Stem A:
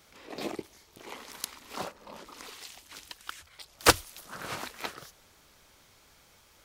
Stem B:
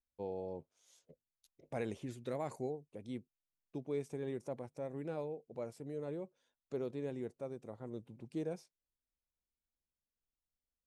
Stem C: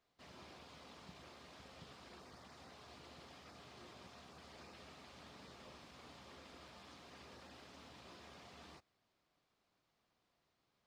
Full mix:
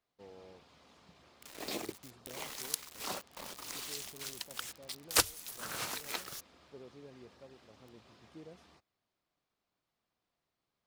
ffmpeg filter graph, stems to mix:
-filter_complex "[0:a]highshelf=f=3500:g=11,acrusher=bits=6:mix=0:aa=0.000001,adelay=1300,volume=0.794[s0];[1:a]volume=0.237[s1];[2:a]volume=0.562[s2];[s0][s1][s2]amix=inputs=3:normalize=0,acompressor=threshold=0.00891:ratio=1.5"

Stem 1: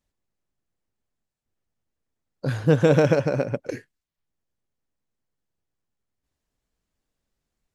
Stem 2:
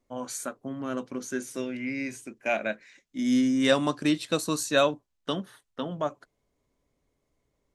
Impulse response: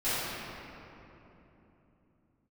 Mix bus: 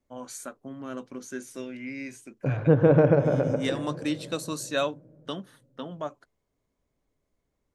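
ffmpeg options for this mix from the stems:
-filter_complex "[0:a]lowpass=1400,volume=0.841,asplit=3[s0][s1][s2];[s1]volume=0.0891[s3];[1:a]volume=0.596[s4];[s2]apad=whole_len=341593[s5];[s4][s5]sidechaincompress=threshold=0.0126:ratio=5:attack=40:release=104[s6];[2:a]atrim=start_sample=2205[s7];[s3][s7]afir=irnorm=-1:irlink=0[s8];[s0][s6][s8]amix=inputs=3:normalize=0"

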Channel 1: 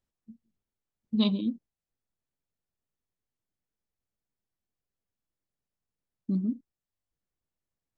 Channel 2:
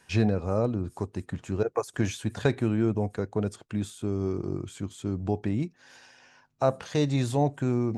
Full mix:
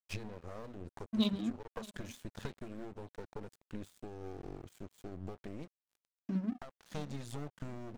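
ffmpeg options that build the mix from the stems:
-filter_complex "[0:a]bandreject=f=50:t=h:w=6,bandreject=f=100:t=h:w=6,bandreject=f=150:t=h:w=6,bandreject=f=200:t=h:w=6,bandreject=f=250:t=h:w=6,volume=0.596,asplit=3[s0][s1][s2];[s1]volume=0.168[s3];[1:a]acompressor=threshold=0.0355:ratio=8,aeval=exprs='clip(val(0),-1,0.01)':c=same,volume=0.708[s4];[s2]apad=whole_len=351859[s5];[s4][s5]sidechaincompress=threshold=0.02:ratio=8:attack=5.2:release=649[s6];[s3]aecho=0:1:623|1246|1869|2492|3115:1|0.39|0.152|0.0593|0.0231[s7];[s0][s6][s7]amix=inputs=3:normalize=0,aeval=exprs='sgn(val(0))*max(abs(val(0))-0.00501,0)':c=same"

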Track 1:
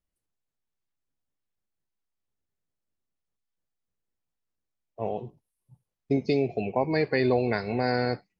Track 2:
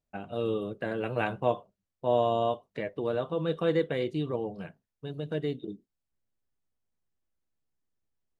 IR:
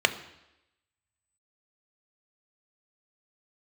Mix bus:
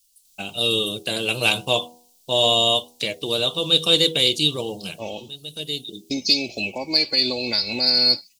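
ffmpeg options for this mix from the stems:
-filter_complex "[0:a]aecho=1:1:3.5:0.61,alimiter=limit=0.119:level=0:latency=1:release=267,volume=0.891,asplit=2[s0][s1];[1:a]bandreject=f=80.91:t=h:w=4,bandreject=f=161.82:t=h:w=4,bandreject=f=242.73:t=h:w=4,bandreject=f=323.64:t=h:w=4,bandreject=f=404.55:t=h:w=4,bandreject=f=485.46:t=h:w=4,bandreject=f=566.37:t=h:w=4,bandreject=f=647.28:t=h:w=4,bandreject=f=728.19:t=h:w=4,bandreject=f=809.1:t=h:w=4,bandreject=f=890.01:t=h:w=4,bandreject=f=970.92:t=h:w=4,acontrast=39,adelay=250,volume=0.841[s2];[s1]apad=whole_len=381402[s3];[s2][s3]sidechaincompress=threshold=0.00891:ratio=12:attack=16:release=1080[s4];[s0][s4]amix=inputs=2:normalize=0,aexciter=amount=12.8:drive=9.5:freq=2900"

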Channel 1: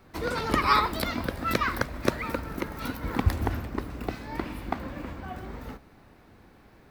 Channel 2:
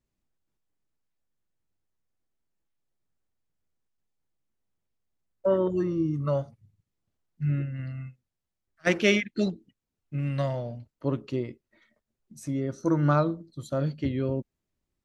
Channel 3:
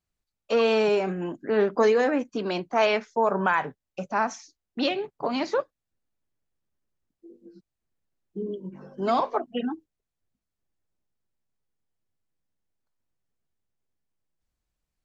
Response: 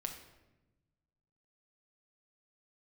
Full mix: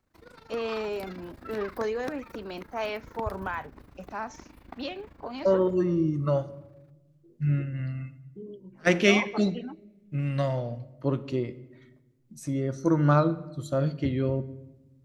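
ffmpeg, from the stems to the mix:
-filter_complex "[0:a]tremolo=f=26:d=0.788,volume=0.251,afade=t=in:st=0.64:d=0.5:silence=0.473151[s0];[1:a]volume=0.794,asplit=2[s1][s2];[s2]volume=0.631[s3];[2:a]volume=0.316[s4];[3:a]atrim=start_sample=2205[s5];[s3][s5]afir=irnorm=-1:irlink=0[s6];[s0][s1][s4][s6]amix=inputs=4:normalize=0"

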